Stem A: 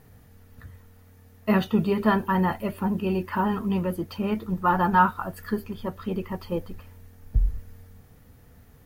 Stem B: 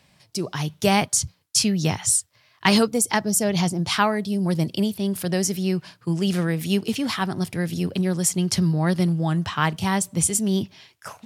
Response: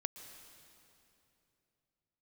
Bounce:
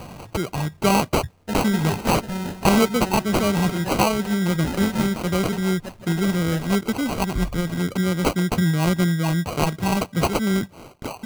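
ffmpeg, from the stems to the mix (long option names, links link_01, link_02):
-filter_complex "[0:a]acrusher=samples=39:mix=1:aa=0.000001,volume=-6dB,asplit=2[link_01][link_02];[link_02]volume=-11.5dB[link_03];[1:a]acompressor=mode=upward:threshold=-23dB:ratio=2.5,acrusher=samples=25:mix=1:aa=0.000001,volume=1dB[link_04];[link_03]aecho=0:1:163:1[link_05];[link_01][link_04][link_05]amix=inputs=3:normalize=0"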